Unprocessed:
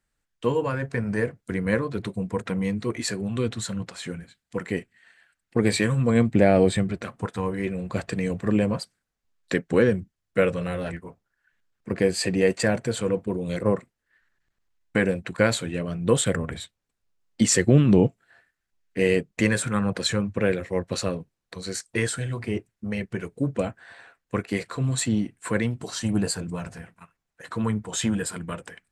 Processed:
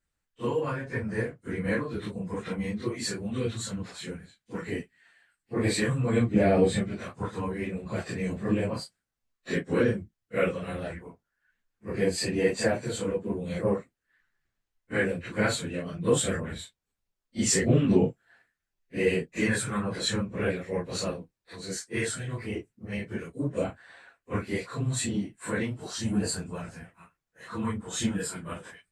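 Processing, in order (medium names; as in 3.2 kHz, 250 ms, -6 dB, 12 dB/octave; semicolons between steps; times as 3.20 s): phase randomisation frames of 100 ms; harmonic-percussive split harmonic -3 dB; trim -2.5 dB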